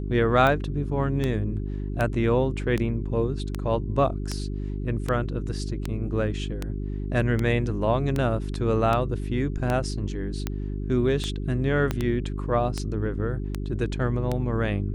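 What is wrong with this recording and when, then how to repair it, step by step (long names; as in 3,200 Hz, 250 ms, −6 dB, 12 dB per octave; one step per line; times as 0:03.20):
mains hum 50 Hz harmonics 8 −30 dBFS
scratch tick 78 rpm −13 dBFS
0:11.91: click −12 dBFS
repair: click removal
hum removal 50 Hz, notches 8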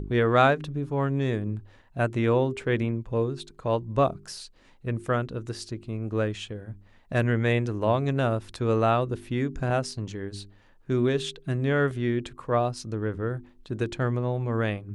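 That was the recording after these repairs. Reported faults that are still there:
0:11.91: click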